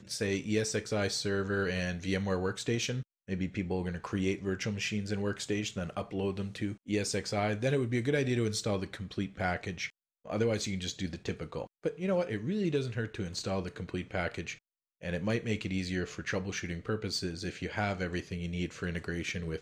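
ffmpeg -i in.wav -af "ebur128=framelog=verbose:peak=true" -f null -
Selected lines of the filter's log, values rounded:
Integrated loudness:
  I:         -33.9 LUFS
  Threshold: -43.9 LUFS
Loudness range:
  LRA:         3.3 LU
  Threshold: -54.0 LUFS
  LRA low:   -35.5 LUFS
  LRA high:  -32.2 LUFS
True peak:
  Peak:      -16.4 dBFS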